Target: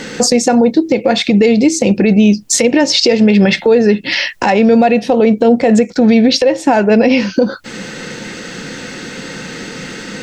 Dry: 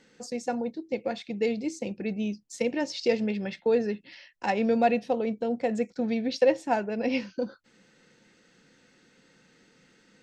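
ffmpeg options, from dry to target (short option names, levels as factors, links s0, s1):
-af "acompressor=threshold=0.0126:ratio=8,alimiter=level_in=56.2:limit=0.891:release=50:level=0:latency=1,volume=0.891"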